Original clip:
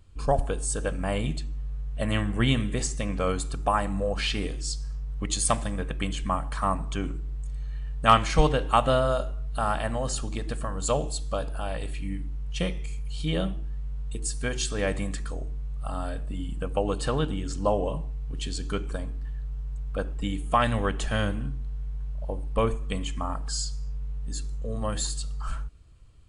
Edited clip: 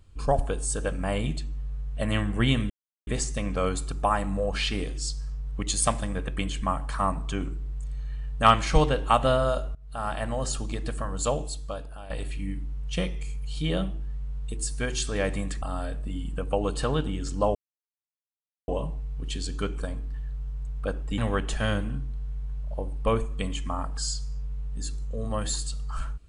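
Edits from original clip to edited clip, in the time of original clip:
2.7 insert silence 0.37 s
9.38–10.16 fade in equal-power, from -23 dB
10.8–11.73 fade out, to -12.5 dB
15.25–15.86 cut
17.79 insert silence 1.13 s
20.29–20.69 cut

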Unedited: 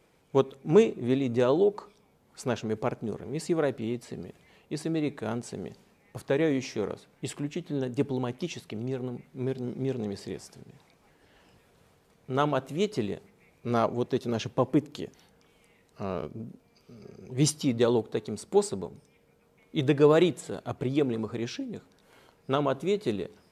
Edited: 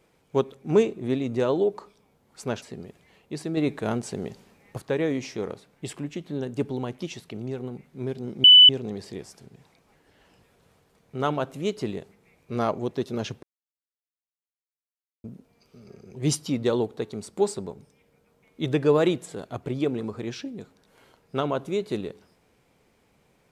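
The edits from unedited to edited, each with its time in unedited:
2.62–4.02 cut
4.97–6.18 gain +5 dB
9.84 add tone 2990 Hz -7.5 dBFS 0.25 s
14.58–16.39 mute

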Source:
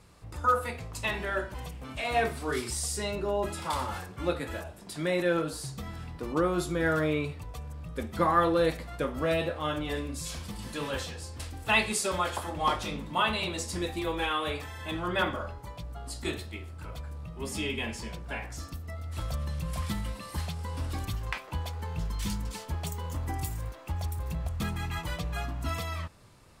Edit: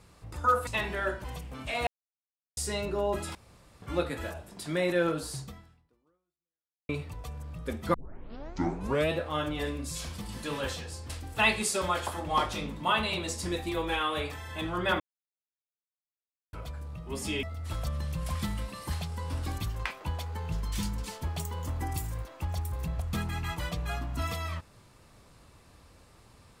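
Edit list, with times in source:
0.67–0.97 cut
2.17–2.87 mute
3.65–4.12 room tone
5.72–7.19 fade out exponential
8.24 tape start 1.16 s
15.3–16.83 mute
17.73–18.9 cut

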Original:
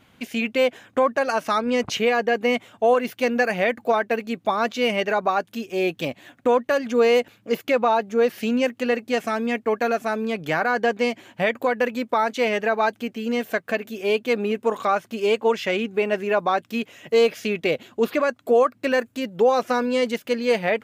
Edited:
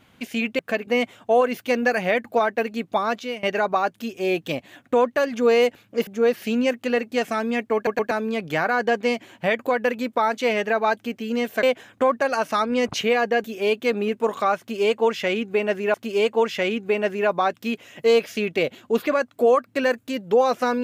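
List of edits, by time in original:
0.59–2.4 swap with 13.59–13.87
4.42–4.96 fade out equal-power, to -21.5 dB
7.6–8.03 cut
9.71 stutter in place 0.12 s, 3 plays
15.02–16.37 loop, 2 plays

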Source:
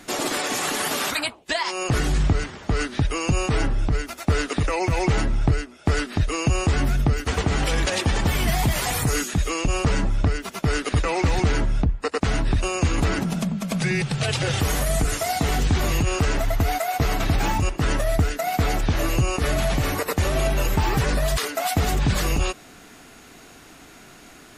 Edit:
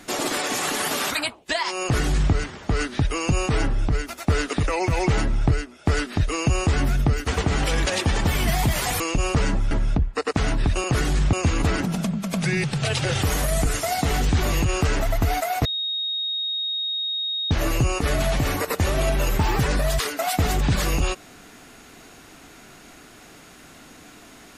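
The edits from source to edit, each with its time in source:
1.83–2.32 copy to 12.71
9–9.5 cut
10.21–11.58 cut
17.03–18.89 bleep 3740 Hz -23.5 dBFS

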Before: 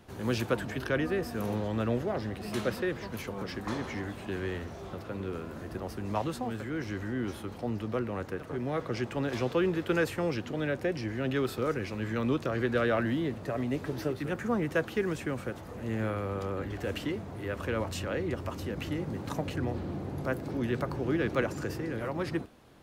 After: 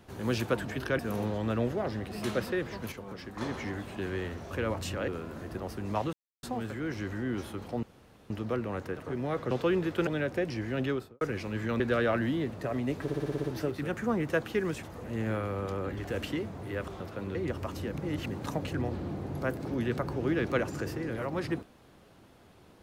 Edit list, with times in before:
0.99–1.29 cut
3.22–3.71 gain -5.5 dB
4.81–5.28 swap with 17.61–18.18
6.33 insert silence 0.30 s
7.73 insert room tone 0.47 s
8.94–9.42 cut
9.98–10.54 cut
11.29–11.68 studio fade out
12.27–12.64 cut
13.86 stutter 0.06 s, 8 plays
15.25–15.56 cut
18.81–19.09 reverse

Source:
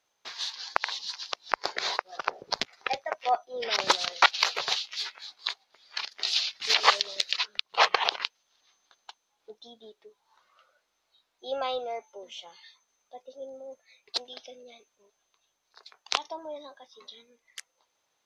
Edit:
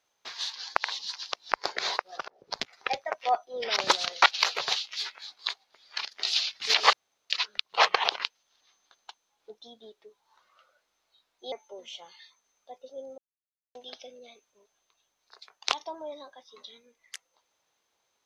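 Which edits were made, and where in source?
2.28–2.74 fade in
6.93–7.3 room tone
11.52–11.96 cut
13.62–14.19 mute

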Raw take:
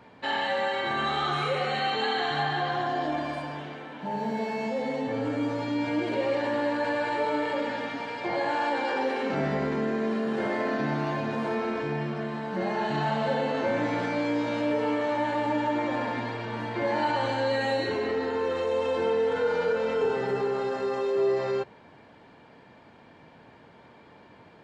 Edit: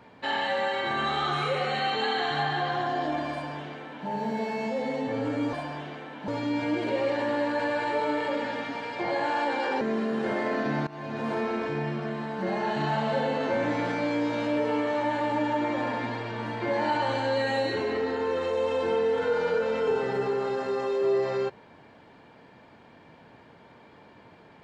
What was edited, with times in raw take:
3.32–4.07 copy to 5.53
9.06–9.95 cut
11.01–11.43 fade in linear, from -20 dB

